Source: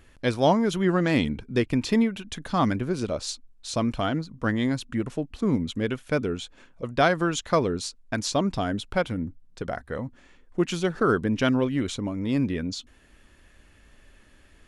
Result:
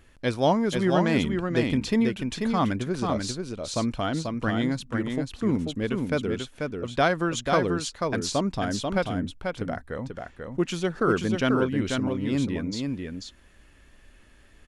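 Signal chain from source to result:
single-tap delay 489 ms −4.5 dB
level −1.5 dB

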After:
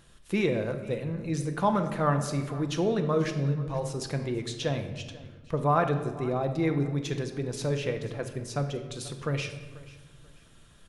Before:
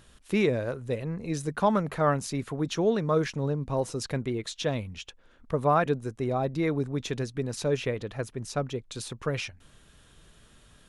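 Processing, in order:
0:03.29–0:03.89: parametric band 1,400 Hz → 210 Hz −13 dB 0.8 octaves
on a send: repeating echo 487 ms, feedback 29%, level −19.5 dB
on the sum: rectangular room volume 750 cubic metres, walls mixed, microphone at 0.78 metres
level −2 dB

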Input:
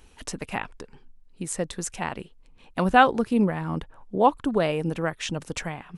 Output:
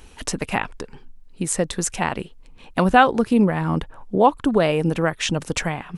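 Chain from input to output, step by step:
downward compressor 1.5 to 1, threshold −26 dBFS, peak gain reduction 6 dB
level +8 dB

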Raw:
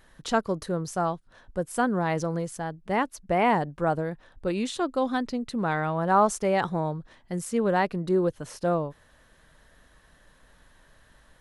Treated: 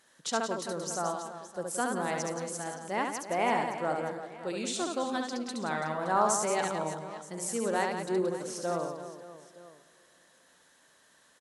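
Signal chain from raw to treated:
high-pass filter 230 Hz 12 dB per octave
parametric band 7,100 Hz +11 dB 1.5 octaves
reverse bouncing-ball delay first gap 70 ms, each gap 1.5×, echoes 5
on a send at −19 dB: convolution reverb RT60 3.2 s, pre-delay 98 ms
on the sum: level −7 dB

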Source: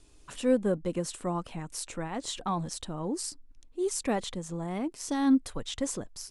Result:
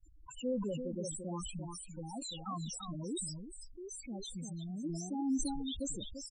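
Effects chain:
high-shelf EQ 2,500 Hz +10.5 dB
downward compressor 2 to 1, threshold −47 dBFS, peak gain reduction 15.5 dB
spectral peaks only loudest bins 4
downward expander −51 dBFS
on a send: single-tap delay 343 ms −8.5 dB
on the sum: gain on a spectral selection 0:03.20–0:04.84, 250–1,500 Hz −11 dB
parametric band 1,900 Hz +4.5 dB 0.88 octaves
level that may fall only so fast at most 34 dB per second
level +3.5 dB

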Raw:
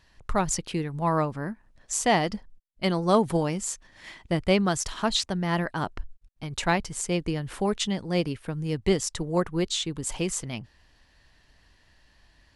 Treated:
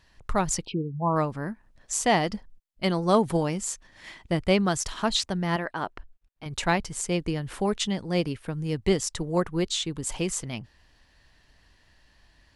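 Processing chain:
0:00.66–0:01.16: gate on every frequency bin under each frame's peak −15 dB strong
0:05.56–0:06.46: bass and treble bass −10 dB, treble −8 dB

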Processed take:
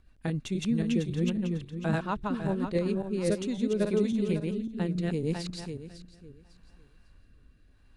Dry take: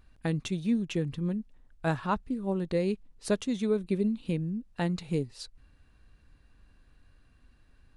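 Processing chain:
feedback delay that plays each chunk backwards 275 ms, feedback 46%, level −0.5 dB
rotating-speaker cabinet horn 7.5 Hz, later 0.75 Hz, at 0:02.85

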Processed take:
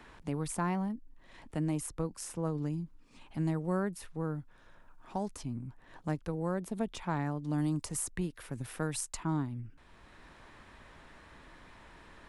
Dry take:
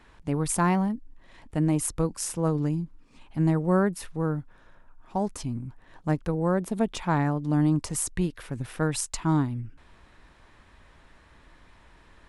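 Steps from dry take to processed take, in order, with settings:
0:07.58–0:09.23: high-shelf EQ 6,200 Hz +10.5 dB
multiband upward and downward compressor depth 40%
level −8.5 dB

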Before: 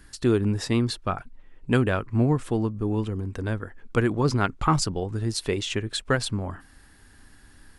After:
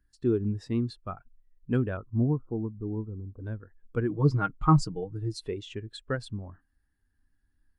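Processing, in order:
0:01.97–0:03.40: Butterworth low-pass 1,400 Hz 96 dB per octave
0:04.09–0:05.48: comb filter 6.4 ms, depth 78%
every bin expanded away from the loudest bin 1.5 to 1
level −4 dB

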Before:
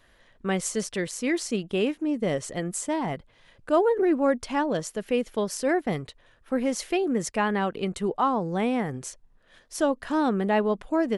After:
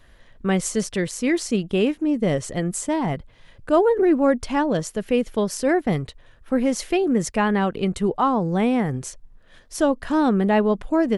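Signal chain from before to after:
low-shelf EQ 170 Hz +9.5 dB
level +3 dB

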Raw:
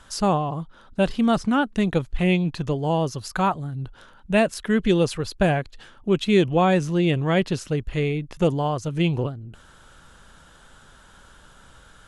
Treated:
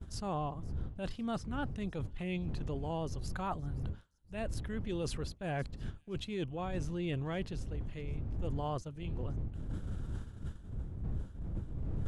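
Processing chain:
wind on the microphone 92 Hz −18 dBFS
downward expander −24 dBFS
amplitude tremolo 0.85 Hz, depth 37%
reversed playback
downward compressor 12 to 1, threshold −34 dBFS, peak gain reduction 31 dB
reversed playback
transient designer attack −7 dB, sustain 0 dB
on a send: delay with a high-pass on its return 519 ms, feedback 33%, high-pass 5,100 Hz, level −19 dB
on the sum: level +1.5 dB

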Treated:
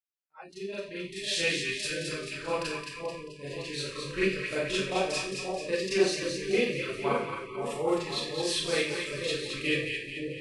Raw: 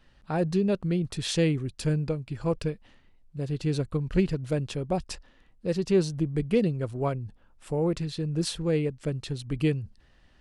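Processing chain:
fade in at the beginning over 2.03 s
low-shelf EQ 460 Hz −9.5 dB
output level in coarse steps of 10 dB
echo with a time of its own for lows and highs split 950 Hz, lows 529 ms, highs 218 ms, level −5 dB
four-comb reverb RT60 0.53 s, combs from 29 ms, DRR −9 dB
bit-depth reduction 12 bits, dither triangular
drawn EQ curve 220 Hz 0 dB, 2,200 Hz +13 dB, 6,500 Hz +8 dB
noise reduction from a noise print of the clip's start 29 dB
hollow resonant body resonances 370/2,500 Hz, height 7 dB
level −9 dB

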